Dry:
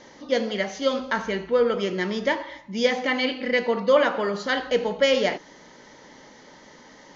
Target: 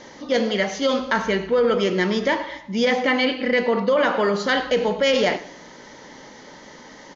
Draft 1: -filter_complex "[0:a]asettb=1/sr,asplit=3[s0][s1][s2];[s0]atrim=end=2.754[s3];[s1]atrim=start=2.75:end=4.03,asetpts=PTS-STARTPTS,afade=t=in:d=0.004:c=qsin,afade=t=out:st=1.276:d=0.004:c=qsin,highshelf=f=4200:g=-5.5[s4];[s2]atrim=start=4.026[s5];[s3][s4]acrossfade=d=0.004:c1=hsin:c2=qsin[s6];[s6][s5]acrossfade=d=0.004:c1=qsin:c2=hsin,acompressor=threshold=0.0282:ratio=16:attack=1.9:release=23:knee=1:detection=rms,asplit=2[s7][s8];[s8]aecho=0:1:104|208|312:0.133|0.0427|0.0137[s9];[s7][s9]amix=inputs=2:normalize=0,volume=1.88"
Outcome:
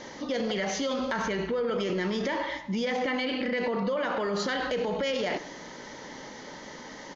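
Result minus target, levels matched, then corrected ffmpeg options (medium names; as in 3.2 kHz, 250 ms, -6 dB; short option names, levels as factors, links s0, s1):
compression: peak gain reduction +11 dB
-filter_complex "[0:a]asettb=1/sr,asplit=3[s0][s1][s2];[s0]atrim=end=2.754[s3];[s1]atrim=start=2.75:end=4.03,asetpts=PTS-STARTPTS,afade=t=in:d=0.004:c=qsin,afade=t=out:st=1.276:d=0.004:c=qsin,highshelf=f=4200:g=-5.5[s4];[s2]atrim=start=4.026[s5];[s3][s4]acrossfade=d=0.004:c1=hsin:c2=qsin[s6];[s6][s5]acrossfade=d=0.004:c1=qsin:c2=hsin,acompressor=threshold=0.106:ratio=16:attack=1.9:release=23:knee=1:detection=rms,asplit=2[s7][s8];[s8]aecho=0:1:104|208|312:0.133|0.0427|0.0137[s9];[s7][s9]amix=inputs=2:normalize=0,volume=1.88"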